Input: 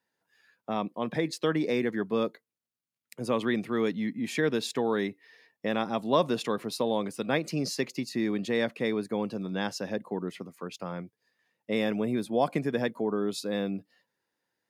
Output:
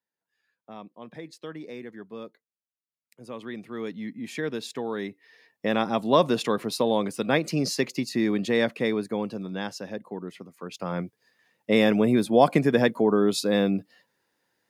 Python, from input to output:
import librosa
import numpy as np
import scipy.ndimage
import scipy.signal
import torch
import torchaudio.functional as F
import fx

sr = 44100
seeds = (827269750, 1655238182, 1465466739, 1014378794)

y = fx.gain(x, sr, db=fx.line((3.23, -11.5), (4.09, -3.5), (4.95, -3.5), (5.72, 4.5), (8.69, 4.5), (9.88, -2.5), (10.52, -2.5), (11.0, 8.0)))